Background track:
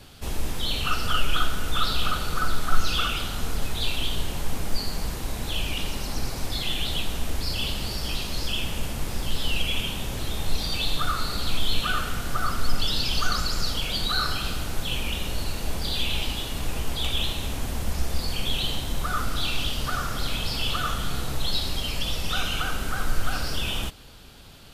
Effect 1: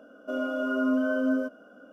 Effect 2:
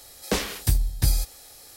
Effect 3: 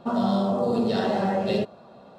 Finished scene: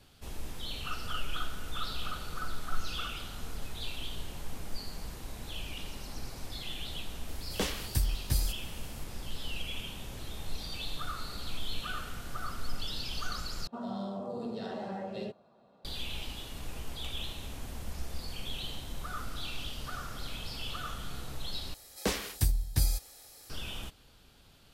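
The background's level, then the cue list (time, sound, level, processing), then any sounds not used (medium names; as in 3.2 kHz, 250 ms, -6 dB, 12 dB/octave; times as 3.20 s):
background track -12 dB
7.28 s: add 2 -8 dB
13.67 s: replace with 3 -14.5 dB
21.74 s: replace with 2 -6 dB
not used: 1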